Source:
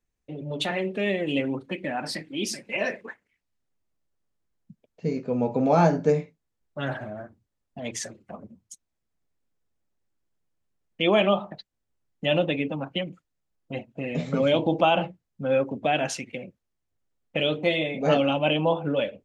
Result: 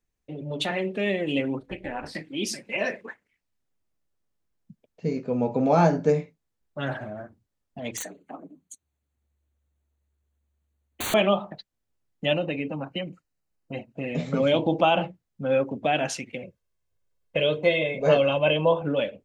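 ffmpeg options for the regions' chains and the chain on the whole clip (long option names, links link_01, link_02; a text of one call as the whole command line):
ffmpeg -i in.wav -filter_complex "[0:a]asettb=1/sr,asplit=3[link_01][link_02][link_03];[link_01]atrim=end=1.604[link_04];[link_02]atrim=start=1.6:end=2.15,asetpts=PTS-STARTPTS,afade=type=in:duration=0.004:curve=qsin,afade=type=out:start_time=0.546:duration=0.004:curve=qsin,acrossover=split=3100[link_05][link_06];[link_06]acompressor=threshold=-41dB:ratio=4:attack=1:release=60[link_07];[link_05][link_07]amix=inputs=2:normalize=0,tremolo=f=230:d=0.824[link_08];[link_03]atrim=start=2.146[link_09];[link_04][link_08]acrossfade=duration=0.004:curve1=hsin:curve2=qsin[link_10];[link_10][link_09]acrossfade=duration=0.004:curve1=qsin:curve2=hsin,asettb=1/sr,asplit=3[link_11][link_12][link_13];[link_11]atrim=end=7.974[link_14];[link_12]atrim=start=7.97:end=11.14,asetpts=PTS-STARTPTS,afade=type=in:duration=0.004:curve=qsin,afade=type=out:start_time=3.166:duration=0.004:curve=qsin,afreqshift=71,aeval=exprs='(mod(16.8*val(0)+1,2)-1)/16.8':channel_layout=same,asuperstop=centerf=5200:order=20:qfactor=4.1[link_15];[link_13]atrim=start=11.136[link_16];[link_14][link_15]acrossfade=duration=0.004:curve1=hsin:curve2=qsin[link_17];[link_17][link_16]acrossfade=duration=0.004:curve1=qsin:curve2=hsin,asettb=1/sr,asplit=3[link_18][link_19][link_20];[link_18]atrim=end=12.334[link_21];[link_19]atrim=start=12.33:end=13.94,asetpts=PTS-STARTPTS,afade=type=in:duration=0.004:curve=qsin,afade=type=out:start_time=1.606:duration=0.004:curve=qsin,asuperstop=centerf=3400:order=20:qfactor=7.2,acompressor=threshold=-29dB:ratio=1.5:attack=3.2:release=140:knee=1:detection=peak[link_22];[link_20]atrim=start=13.936[link_23];[link_21][link_22]acrossfade=duration=0.004:curve1=hsin:curve2=qsin[link_24];[link_24][link_23]acrossfade=duration=0.004:curve1=qsin:curve2=hsin,asettb=1/sr,asplit=3[link_25][link_26][link_27];[link_25]atrim=end=16.434[link_28];[link_26]atrim=start=16.43:end=18.82,asetpts=PTS-STARTPTS,afade=type=in:duration=0.004:curve=qsin,afade=type=out:start_time=2.386:duration=0.004:curve=qsin,acrossover=split=3700[link_29][link_30];[link_30]acompressor=threshold=-42dB:ratio=4:attack=1:release=60[link_31];[link_29][link_31]amix=inputs=2:normalize=0,aecho=1:1:1.9:0.55,atrim=end_sample=105399[link_32];[link_27]atrim=start=18.816[link_33];[link_28][link_32]acrossfade=duration=0.004:curve1=hsin:curve2=qsin[link_34];[link_34][link_33]acrossfade=duration=0.004:curve1=qsin:curve2=hsin" out.wav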